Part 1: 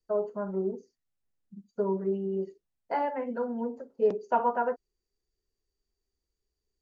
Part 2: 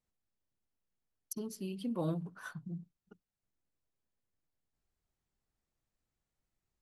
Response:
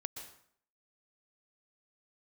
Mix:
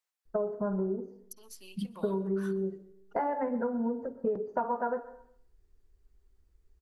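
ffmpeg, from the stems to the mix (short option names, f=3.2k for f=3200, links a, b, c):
-filter_complex "[0:a]aemphasis=mode=reproduction:type=bsi,acompressor=threshold=-35dB:ratio=8,highshelf=f=2.2k:t=q:w=1.5:g=-8,adelay=250,volume=3dB,asplit=2[a][b];[b]volume=-3.5dB[c];[1:a]highpass=880,acompressor=threshold=-48dB:ratio=6,volume=2dB,asplit=2[d][e];[e]volume=-13dB[f];[2:a]atrim=start_sample=2205[g];[c][f]amix=inputs=2:normalize=0[h];[h][g]afir=irnorm=-1:irlink=0[i];[a][d][i]amix=inputs=3:normalize=0"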